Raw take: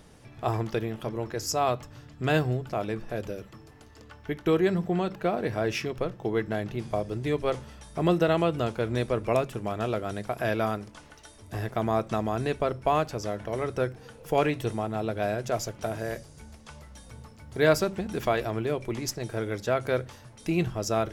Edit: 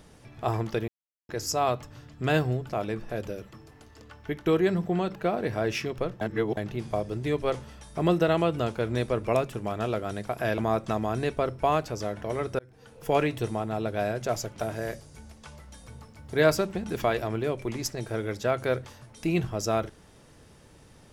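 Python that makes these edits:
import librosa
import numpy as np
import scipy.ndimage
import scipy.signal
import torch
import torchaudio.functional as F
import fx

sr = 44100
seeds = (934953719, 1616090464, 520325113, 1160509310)

y = fx.edit(x, sr, fx.silence(start_s=0.88, length_s=0.41),
    fx.reverse_span(start_s=6.21, length_s=0.36),
    fx.cut(start_s=10.58, length_s=1.23),
    fx.fade_in_span(start_s=13.82, length_s=0.46), tone=tone)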